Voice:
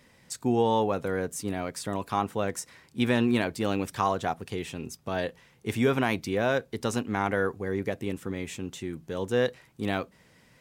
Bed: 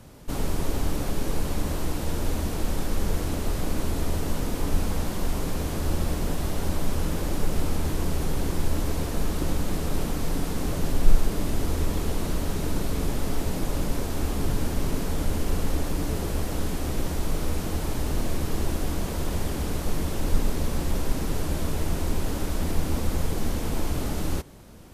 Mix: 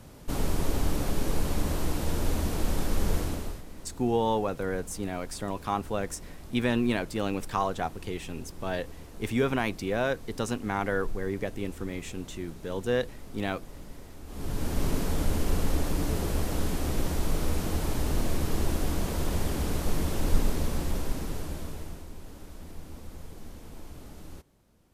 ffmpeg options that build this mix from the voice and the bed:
ffmpeg -i stem1.wav -i stem2.wav -filter_complex "[0:a]adelay=3550,volume=-2dB[link_01];[1:a]volume=16dB,afade=type=out:start_time=3.16:duration=0.47:silence=0.141254,afade=type=in:start_time=14.26:duration=0.58:silence=0.141254,afade=type=out:start_time=20.38:duration=1.69:silence=0.149624[link_02];[link_01][link_02]amix=inputs=2:normalize=0" out.wav

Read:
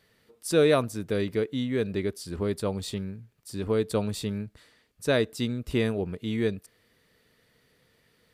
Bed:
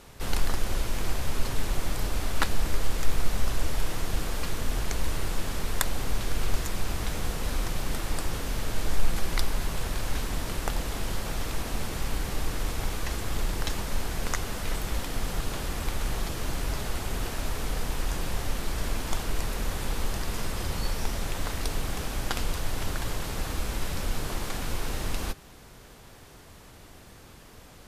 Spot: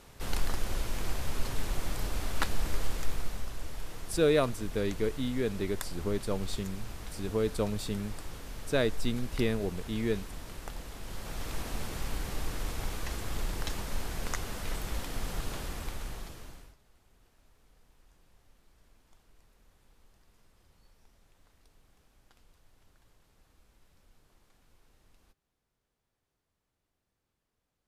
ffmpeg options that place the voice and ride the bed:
ffmpeg -i stem1.wav -i stem2.wav -filter_complex "[0:a]adelay=3650,volume=-4dB[link_01];[1:a]volume=2.5dB,afade=type=out:start_time=2.83:duration=0.66:silence=0.421697,afade=type=in:start_time=11.01:duration=0.56:silence=0.446684,afade=type=out:start_time=15.53:duration=1.23:silence=0.0354813[link_02];[link_01][link_02]amix=inputs=2:normalize=0" out.wav

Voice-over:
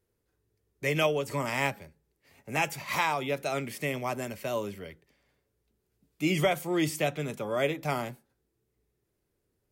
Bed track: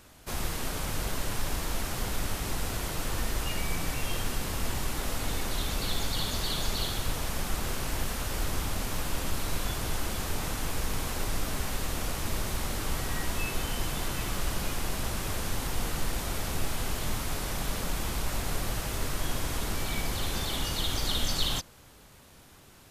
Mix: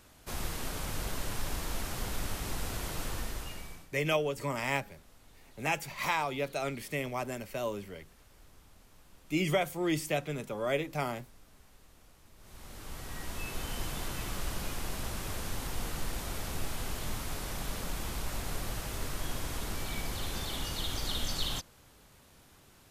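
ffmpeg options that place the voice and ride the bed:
ffmpeg -i stem1.wav -i stem2.wav -filter_complex "[0:a]adelay=3100,volume=-3dB[link_01];[1:a]volume=18.5dB,afade=type=out:start_time=3.02:duration=0.87:silence=0.0668344,afade=type=in:start_time=12.37:duration=1.4:silence=0.0749894[link_02];[link_01][link_02]amix=inputs=2:normalize=0" out.wav

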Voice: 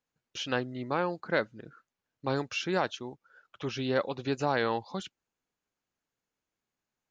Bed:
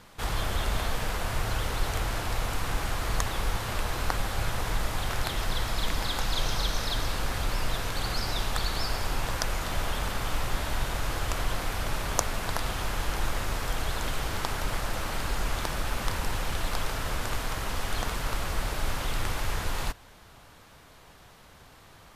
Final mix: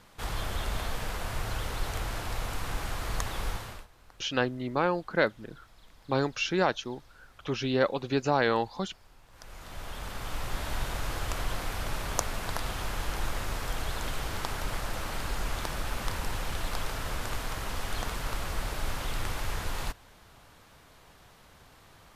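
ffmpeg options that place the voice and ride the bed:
ffmpeg -i stem1.wav -i stem2.wav -filter_complex "[0:a]adelay=3850,volume=3dB[link_01];[1:a]volume=21dB,afade=type=out:start_time=3.49:duration=0.38:silence=0.0630957,afade=type=in:start_time=9.3:duration=1.44:silence=0.0562341[link_02];[link_01][link_02]amix=inputs=2:normalize=0" out.wav

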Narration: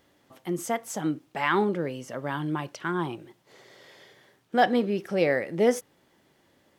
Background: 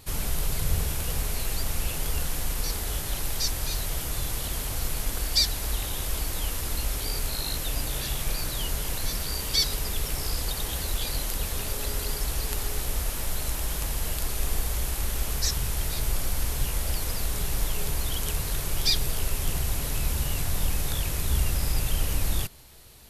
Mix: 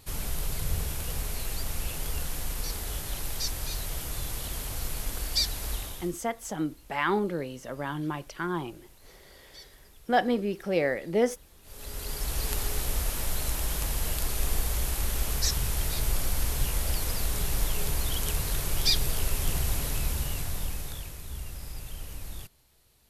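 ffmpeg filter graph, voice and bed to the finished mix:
ffmpeg -i stem1.wav -i stem2.wav -filter_complex "[0:a]adelay=5550,volume=-2.5dB[link_01];[1:a]volume=21.5dB,afade=type=out:start_time=5.74:duration=0.43:silence=0.0794328,afade=type=in:start_time=11.62:duration=0.85:silence=0.0530884,afade=type=out:start_time=19.73:duration=1.45:silence=0.223872[link_02];[link_01][link_02]amix=inputs=2:normalize=0" out.wav

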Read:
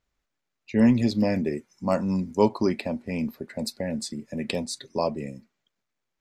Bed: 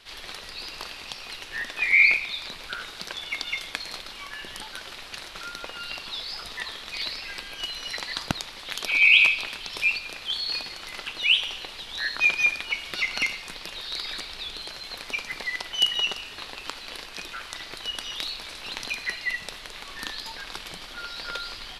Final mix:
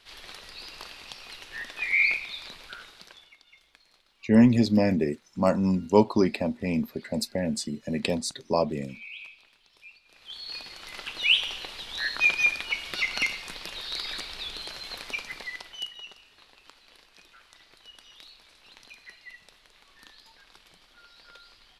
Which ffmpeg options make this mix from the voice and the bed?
ffmpeg -i stem1.wav -i stem2.wav -filter_complex "[0:a]adelay=3550,volume=1.5dB[link_01];[1:a]volume=20dB,afade=type=out:start_time=2.47:duration=0.89:silence=0.0891251,afade=type=in:start_time=10.05:duration=1.23:silence=0.0530884,afade=type=out:start_time=14.92:duration=1.02:silence=0.141254[link_02];[link_01][link_02]amix=inputs=2:normalize=0" out.wav

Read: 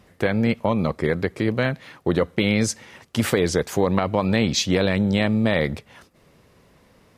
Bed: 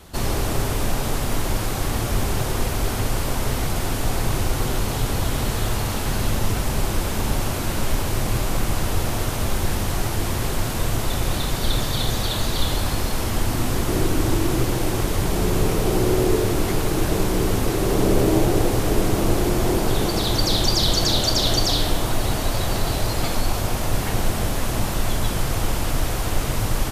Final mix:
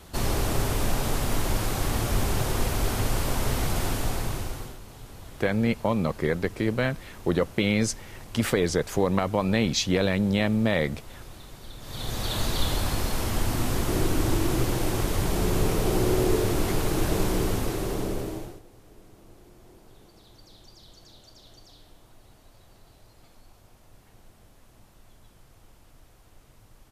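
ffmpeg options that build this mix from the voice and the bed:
ffmpeg -i stem1.wav -i stem2.wav -filter_complex "[0:a]adelay=5200,volume=-3.5dB[link_01];[1:a]volume=14.5dB,afade=type=out:start_time=3.85:duration=0.93:silence=0.11885,afade=type=in:start_time=11.8:duration=0.6:silence=0.133352,afade=type=out:start_time=17.3:duration=1.31:silence=0.0375837[link_02];[link_01][link_02]amix=inputs=2:normalize=0" out.wav

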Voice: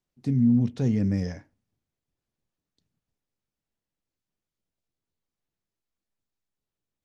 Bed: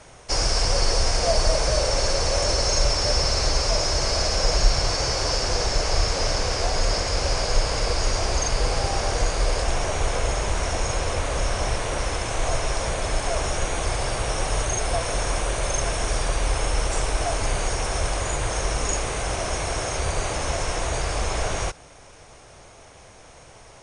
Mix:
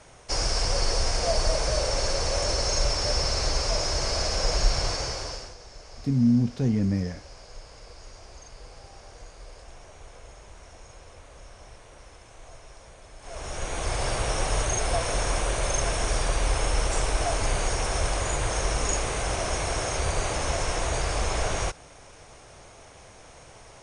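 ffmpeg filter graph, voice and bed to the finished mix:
ffmpeg -i stem1.wav -i stem2.wav -filter_complex "[0:a]adelay=5800,volume=0dB[link_01];[1:a]volume=17.5dB,afade=type=out:start_time=4.86:duration=0.69:silence=0.112202,afade=type=in:start_time=13.19:duration=0.89:silence=0.0841395[link_02];[link_01][link_02]amix=inputs=2:normalize=0" out.wav

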